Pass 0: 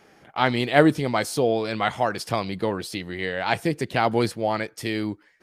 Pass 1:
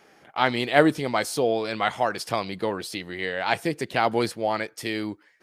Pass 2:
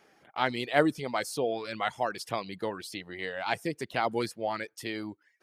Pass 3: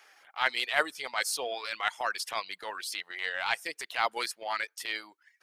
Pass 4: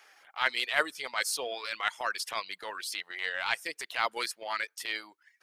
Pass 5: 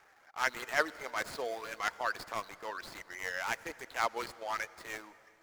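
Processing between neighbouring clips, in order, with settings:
low shelf 190 Hz -9 dB
reverb removal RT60 0.51 s; gain -6 dB
HPF 1100 Hz 12 dB/oct; transient shaper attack -9 dB, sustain -5 dB; gain +8 dB
dynamic EQ 770 Hz, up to -5 dB, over -48 dBFS, Q 3.9
median filter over 15 samples; on a send at -18 dB: reverb RT60 3.2 s, pre-delay 75 ms

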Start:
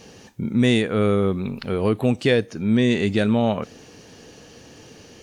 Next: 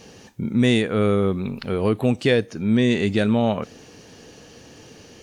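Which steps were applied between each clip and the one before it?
nothing audible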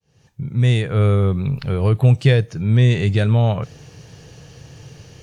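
opening faded in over 1.02 s; resonant low shelf 180 Hz +8 dB, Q 3

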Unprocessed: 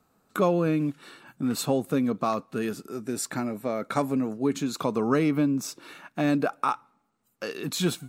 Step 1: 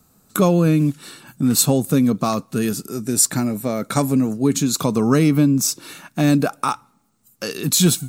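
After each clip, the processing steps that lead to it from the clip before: tone controls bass +10 dB, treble +14 dB; gain +4 dB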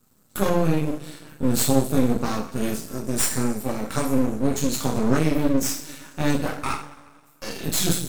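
two-slope reverb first 0.43 s, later 1.8 s, from -18 dB, DRR -4.5 dB; half-wave rectifier; gain -7 dB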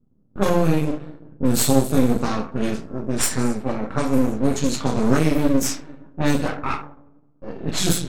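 low-pass opened by the level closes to 330 Hz, open at -16 dBFS; gain +2.5 dB

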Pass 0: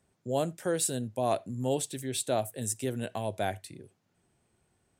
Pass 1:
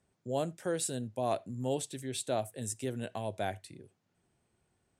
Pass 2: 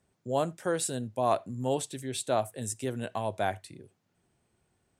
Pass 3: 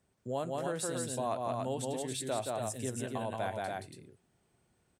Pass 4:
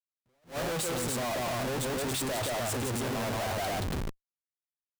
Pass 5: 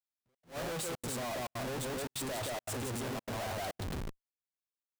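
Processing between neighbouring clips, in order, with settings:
Bessel low-pass 10000 Hz, order 2; gain -3.5 dB
dynamic EQ 1100 Hz, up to +8 dB, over -50 dBFS, Q 1.4; gain +2.5 dB
loudspeakers at several distances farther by 60 m -3 dB, 97 m -5 dB; compressor 2:1, threshold -33 dBFS, peak gain reduction 7 dB; gain -2 dB
Schmitt trigger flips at -49.5 dBFS; attack slew limiter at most 250 dB/s; gain +5.5 dB
step gate "xxxx.xxxxxx.x" 174 bpm -60 dB; gain -5.5 dB

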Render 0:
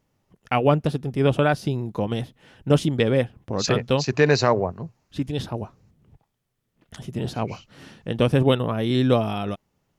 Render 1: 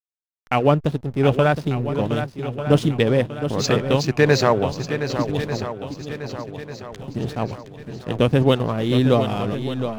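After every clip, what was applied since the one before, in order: backlash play -33 dBFS; swung echo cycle 1.194 s, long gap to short 1.5:1, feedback 43%, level -9 dB; gain +2 dB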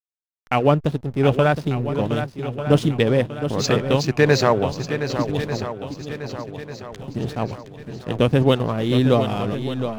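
nothing audible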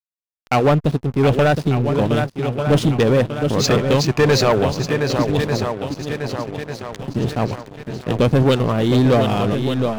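sample leveller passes 3; gain -5.5 dB

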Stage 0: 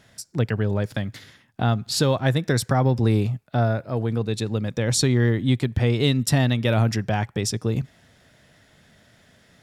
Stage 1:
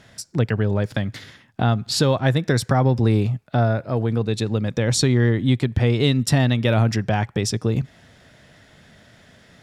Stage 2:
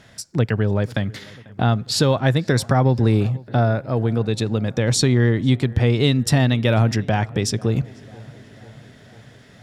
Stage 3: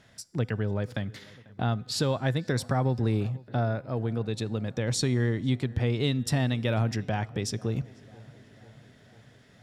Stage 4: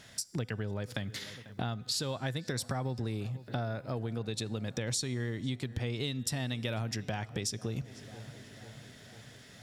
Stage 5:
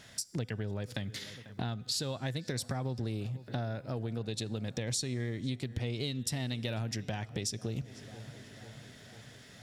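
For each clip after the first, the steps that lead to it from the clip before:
high shelf 9800 Hz -9.5 dB; in parallel at -1 dB: compressor, threshold -28 dBFS, peak gain reduction 12.5 dB
darkening echo 0.493 s, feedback 68%, low-pass 2400 Hz, level -22.5 dB; gain +1 dB
resonator 250 Hz, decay 1.2 s, mix 40%; gain -5 dB
high shelf 2900 Hz +11 dB; compressor 5:1, threshold -34 dBFS, peak gain reduction 15 dB; gain +1.5 dB
dynamic EQ 1100 Hz, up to -4 dB, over -53 dBFS, Q 0.83; Doppler distortion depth 0.17 ms

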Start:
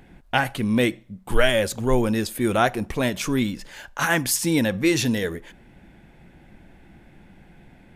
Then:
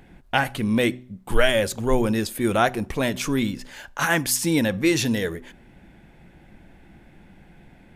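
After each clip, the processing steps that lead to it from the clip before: de-hum 125.6 Hz, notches 3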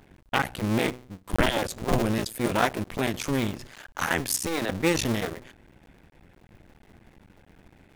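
cycle switcher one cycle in 2, muted; gain -2 dB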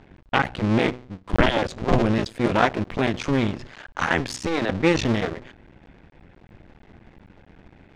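air absorption 140 m; gain +5 dB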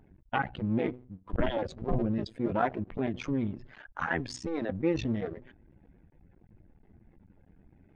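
spectral contrast raised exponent 1.7; gain -8.5 dB

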